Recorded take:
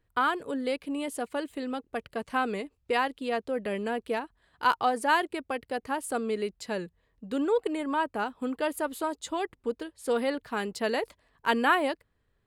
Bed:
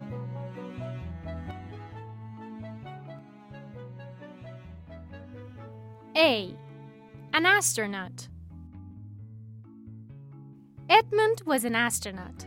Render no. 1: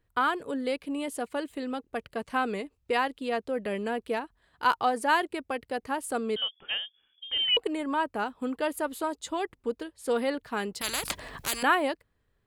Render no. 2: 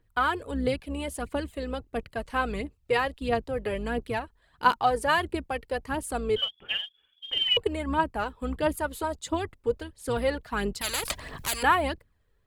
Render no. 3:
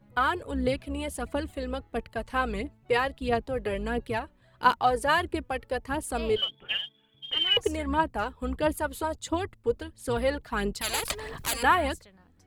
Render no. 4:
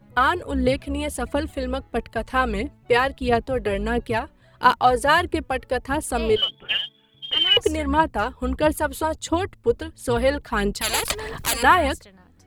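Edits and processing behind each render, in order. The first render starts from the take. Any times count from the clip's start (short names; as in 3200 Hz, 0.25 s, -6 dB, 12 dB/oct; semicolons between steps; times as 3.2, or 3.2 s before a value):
6.36–7.57 inverted band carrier 3400 Hz; 10.81–11.63 spectral compressor 10:1
octaver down 2 oct, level -5 dB; phaser 1.5 Hz, delay 2.4 ms, feedback 46%
add bed -19 dB
gain +6.5 dB; limiter -3 dBFS, peak gain reduction 2 dB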